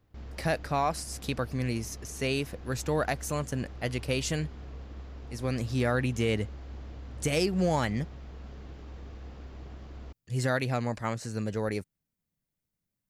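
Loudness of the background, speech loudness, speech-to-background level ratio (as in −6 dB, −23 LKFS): −45.0 LKFS, −31.0 LKFS, 14.0 dB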